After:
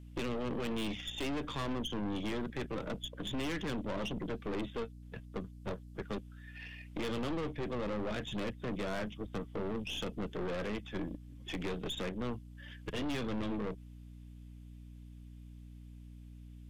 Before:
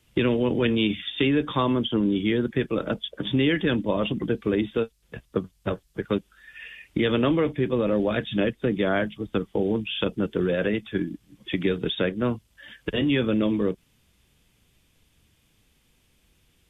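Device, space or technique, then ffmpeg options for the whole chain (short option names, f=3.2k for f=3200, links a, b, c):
valve amplifier with mains hum: -af "aeval=exprs='(tanh(28.2*val(0)+0.6)-tanh(0.6))/28.2':c=same,aeval=exprs='val(0)+0.00631*(sin(2*PI*60*n/s)+sin(2*PI*2*60*n/s)/2+sin(2*PI*3*60*n/s)/3+sin(2*PI*4*60*n/s)/4+sin(2*PI*5*60*n/s)/5)':c=same,volume=-5dB"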